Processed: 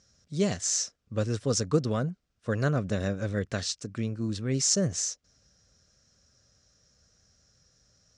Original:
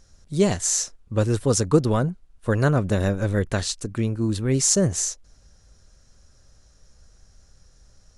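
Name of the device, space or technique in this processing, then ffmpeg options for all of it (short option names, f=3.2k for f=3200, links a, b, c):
car door speaker: -af "highpass=100,equalizer=f=350:t=q:w=4:g=-5,equalizer=f=900:t=q:w=4:g=-9,equalizer=f=5.4k:t=q:w=4:g=5,lowpass=f=7.6k:w=0.5412,lowpass=f=7.6k:w=1.3066,volume=-5.5dB"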